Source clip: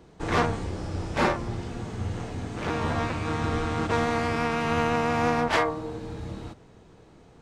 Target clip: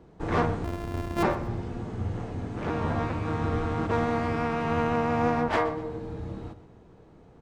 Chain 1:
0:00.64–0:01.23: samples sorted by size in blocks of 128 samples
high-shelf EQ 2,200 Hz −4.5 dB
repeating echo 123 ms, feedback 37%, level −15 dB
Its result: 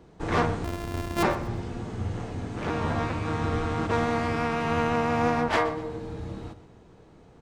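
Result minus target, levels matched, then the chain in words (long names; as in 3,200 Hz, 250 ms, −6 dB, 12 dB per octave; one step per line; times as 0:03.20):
4,000 Hz band +4.5 dB
0:00.64–0:01.23: samples sorted by size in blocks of 128 samples
high-shelf EQ 2,200 Hz −12 dB
repeating echo 123 ms, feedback 37%, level −15 dB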